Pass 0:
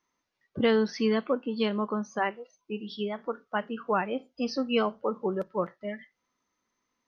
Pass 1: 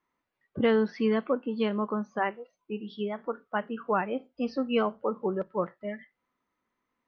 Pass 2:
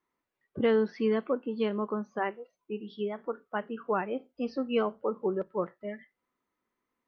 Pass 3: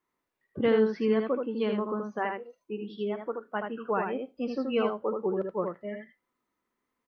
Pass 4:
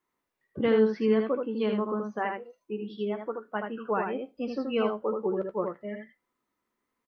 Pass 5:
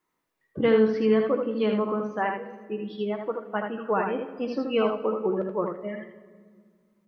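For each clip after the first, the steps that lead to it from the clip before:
LPF 2600 Hz 12 dB/oct
bell 390 Hz +4.5 dB 0.62 oct; gain -3.5 dB
echo 78 ms -4.5 dB
doubler 14 ms -12 dB
shoebox room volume 2100 m³, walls mixed, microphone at 0.59 m; gain +3 dB

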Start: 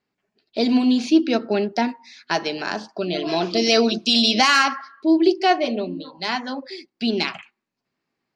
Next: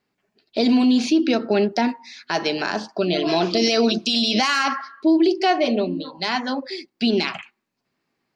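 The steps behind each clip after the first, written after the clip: maximiser +13 dB; gain -9 dB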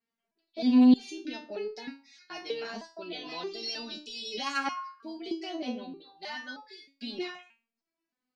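stepped resonator 3.2 Hz 230–430 Hz

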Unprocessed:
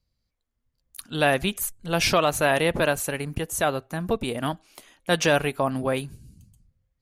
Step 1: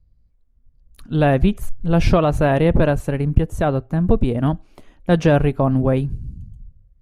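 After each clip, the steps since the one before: tilt -4.5 dB/oct; gain +1 dB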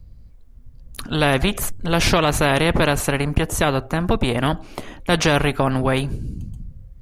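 spectral compressor 2:1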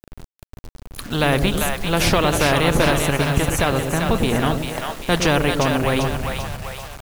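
split-band echo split 550 Hz, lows 0.109 s, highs 0.394 s, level -4.5 dB; bit-crush 6-bit; gain -1 dB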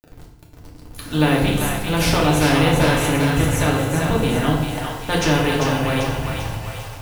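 FDN reverb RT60 0.86 s, low-frequency decay 1.55×, high-frequency decay 0.85×, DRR -2.5 dB; gain -5 dB

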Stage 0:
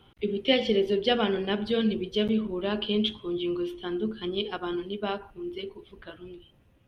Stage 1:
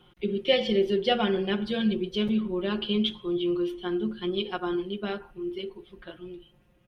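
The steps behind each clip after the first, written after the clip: comb 5.6 ms, depth 74%; gain -2 dB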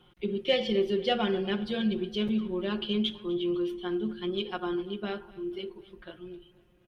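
in parallel at -11 dB: soft clip -19.5 dBFS, distortion -16 dB; on the sum: feedback echo 0.248 s, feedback 52%, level -21 dB; gain -4.5 dB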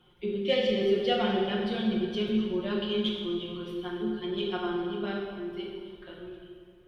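plate-style reverb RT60 1.9 s, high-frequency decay 0.75×, DRR -1.5 dB; gain -3 dB

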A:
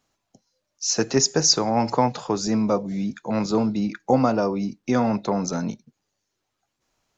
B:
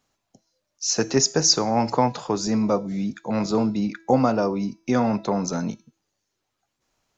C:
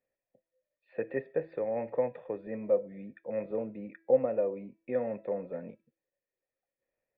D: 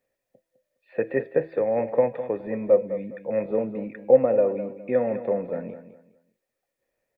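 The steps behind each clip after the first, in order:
de-hum 328.5 Hz, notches 29
vocal tract filter e
feedback echo 0.206 s, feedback 27%, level -12 dB; gain +8.5 dB

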